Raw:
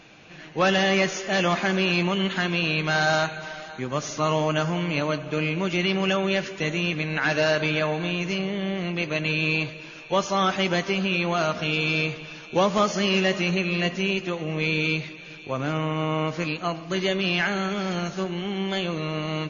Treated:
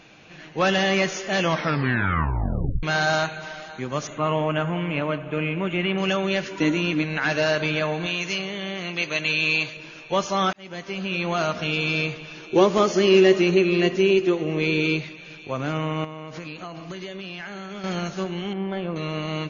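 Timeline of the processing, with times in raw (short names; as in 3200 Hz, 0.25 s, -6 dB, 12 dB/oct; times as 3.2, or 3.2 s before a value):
1.43 tape stop 1.40 s
4.07–5.98 Butterworth band-stop 5200 Hz, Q 1
6.51–7.03 small resonant body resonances 300/970/1400 Hz, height 16 dB -> 12 dB, ringing for 85 ms
8.06–9.77 tilt +2.5 dB/oct
10.53–11.34 fade in
12.37–14.99 bell 370 Hz +13.5 dB 0.4 oct
16.04–17.84 compressor 12:1, threshold -30 dBFS
18.53–18.96 Bessel low-pass 1300 Hz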